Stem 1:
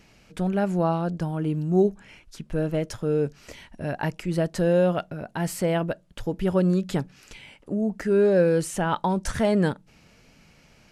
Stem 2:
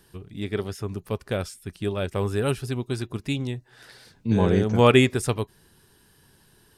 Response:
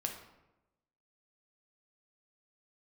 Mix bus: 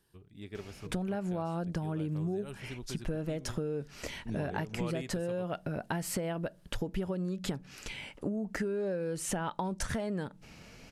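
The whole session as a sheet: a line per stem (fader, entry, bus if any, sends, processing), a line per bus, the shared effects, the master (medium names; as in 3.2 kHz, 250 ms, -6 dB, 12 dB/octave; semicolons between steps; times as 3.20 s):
+3.0 dB, 0.55 s, no send, compression 5:1, threshold -25 dBFS, peak gain reduction 10 dB
-15.0 dB, 0.00 s, no send, none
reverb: none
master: compression, threshold -31 dBFS, peak gain reduction 11 dB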